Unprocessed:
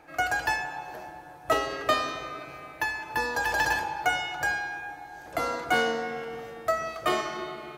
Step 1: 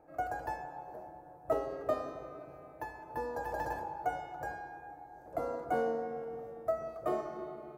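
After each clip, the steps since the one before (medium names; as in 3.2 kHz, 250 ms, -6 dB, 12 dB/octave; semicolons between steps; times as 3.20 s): FFT filter 340 Hz 0 dB, 570 Hz +4 dB, 3.1 kHz -23 dB, 15 kHz -9 dB; trim -6 dB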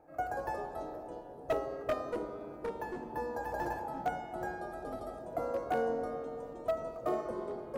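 wavefolder -23.5 dBFS; ever faster or slower copies 123 ms, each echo -5 st, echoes 3, each echo -6 dB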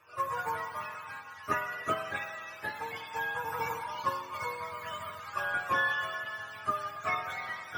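spectrum inverted on a logarithmic axis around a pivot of 890 Hz; trim +5 dB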